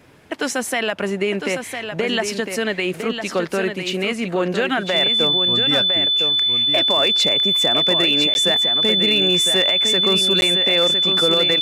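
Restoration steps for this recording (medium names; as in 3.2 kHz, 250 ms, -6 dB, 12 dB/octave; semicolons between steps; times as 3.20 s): clip repair -9.5 dBFS; band-stop 3.5 kHz, Q 30; interpolate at 8.34/10.41 s, 11 ms; inverse comb 1006 ms -7 dB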